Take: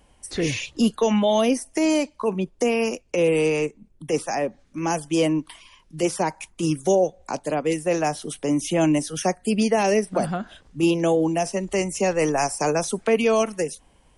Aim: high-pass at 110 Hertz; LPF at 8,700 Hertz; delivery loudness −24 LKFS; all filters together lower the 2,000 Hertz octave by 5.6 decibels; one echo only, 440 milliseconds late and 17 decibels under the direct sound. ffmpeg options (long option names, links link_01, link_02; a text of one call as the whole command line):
ffmpeg -i in.wav -af "highpass=110,lowpass=8700,equalizer=frequency=2000:width_type=o:gain=-7.5,aecho=1:1:440:0.141,volume=-0.5dB" out.wav